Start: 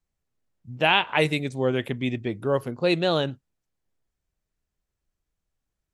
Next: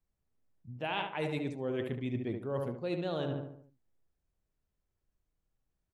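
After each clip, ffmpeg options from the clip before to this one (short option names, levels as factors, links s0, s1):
-filter_complex "[0:a]tiltshelf=f=1500:g=3.5,asplit=2[s0][s1];[s1]adelay=73,lowpass=f=2100:p=1,volume=0.473,asplit=2[s2][s3];[s3]adelay=73,lowpass=f=2100:p=1,volume=0.48,asplit=2[s4][s5];[s5]adelay=73,lowpass=f=2100:p=1,volume=0.48,asplit=2[s6][s7];[s7]adelay=73,lowpass=f=2100:p=1,volume=0.48,asplit=2[s8][s9];[s9]adelay=73,lowpass=f=2100:p=1,volume=0.48,asplit=2[s10][s11];[s11]adelay=73,lowpass=f=2100:p=1,volume=0.48[s12];[s0][s2][s4][s6][s8][s10][s12]amix=inputs=7:normalize=0,areverse,acompressor=threshold=0.0447:ratio=6,areverse,volume=0.562"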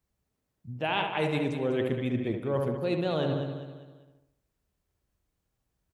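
-filter_complex "[0:a]highpass=42,asplit=2[s0][s1];[s1]aecho=0:1:198|396|594|792:0.335|0.134|0.0536|0.0214[s2];[s0][s2]amix=inputs=2:normalize=0,volume=2"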